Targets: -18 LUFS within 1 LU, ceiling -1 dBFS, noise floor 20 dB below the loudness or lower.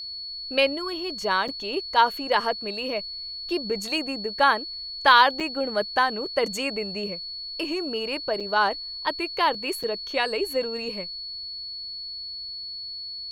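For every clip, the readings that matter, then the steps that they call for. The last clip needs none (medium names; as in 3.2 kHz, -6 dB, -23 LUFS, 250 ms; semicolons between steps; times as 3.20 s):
dropouts 4; longest dropout 5.5 ms; steady tone 4.4 kHz; tone level -33 dBFS; loudness -25.5 LUFS; peak level -4.0 dBFS; loudness target -18.0 LUFS
-> interpolate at 1.48/5.40/8.40/9.83 s, 5.5 ms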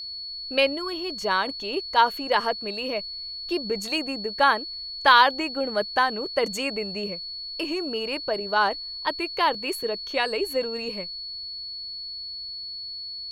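dropouts 0; steady tone 4.4 kHz; tone level -33 dBFS
-> band-stop 4.4 kHz, Q 30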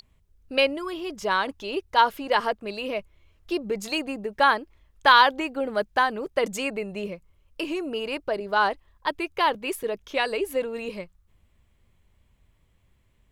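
steady tone not found; loudness -25.5 LUFS; peak level -4.5 dBFS; loudness target -18.0 LUFS
-> trim +7.5 dB; peak limiter -1 dBFS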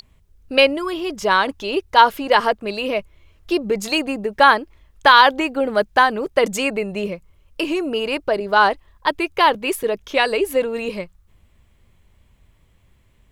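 loudness -18.5 LUFS; peak level -1.0 dBFS; noise floor -57 dBFS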